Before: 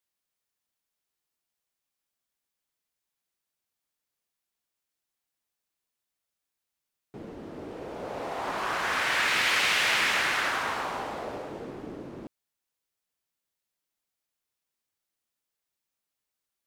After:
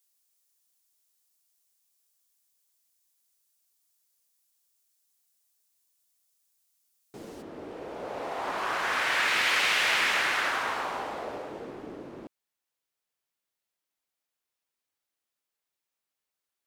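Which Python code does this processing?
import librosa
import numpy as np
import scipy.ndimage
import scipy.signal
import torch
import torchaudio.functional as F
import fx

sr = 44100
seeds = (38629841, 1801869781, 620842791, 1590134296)

y = fx.bass_treble(x, sr, bass_db=-6, treble_db=fx.steps((0.0, 14.0), (7.41, -2.0)))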